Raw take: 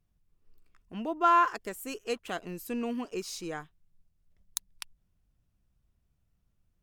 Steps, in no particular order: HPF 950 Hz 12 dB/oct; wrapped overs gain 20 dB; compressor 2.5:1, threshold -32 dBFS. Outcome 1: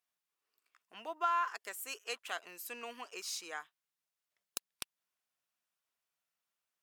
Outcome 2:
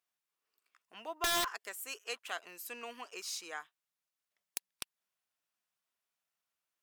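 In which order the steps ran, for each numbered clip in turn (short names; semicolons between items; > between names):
HPF > compressor > wrapped overs; HPF > wrapped overs > compressor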